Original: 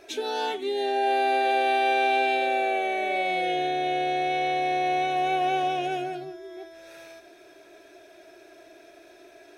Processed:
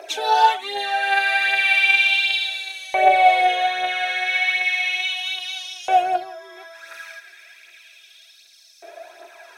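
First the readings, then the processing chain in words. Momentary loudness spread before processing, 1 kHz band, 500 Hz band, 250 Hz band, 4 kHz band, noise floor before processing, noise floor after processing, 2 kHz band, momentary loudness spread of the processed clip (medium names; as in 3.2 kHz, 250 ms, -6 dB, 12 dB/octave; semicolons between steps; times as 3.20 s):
10 LU, +4.5 dB, -1.0 dB, no reading, +11.0 dB, -52 dBFS, -50 dBFS, +11.0 dB, 14 LU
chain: LFO high-pass saw up 0.34 Hz 620–5200 Hz; phaser 1.3 Hz, delay 2.7 ms, feedback 51%; trim +6.5 dB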